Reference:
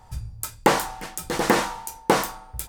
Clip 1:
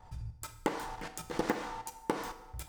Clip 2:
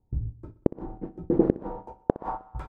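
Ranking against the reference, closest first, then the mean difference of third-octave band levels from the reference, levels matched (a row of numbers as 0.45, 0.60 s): 1, 2; 5.5, 15.5 dB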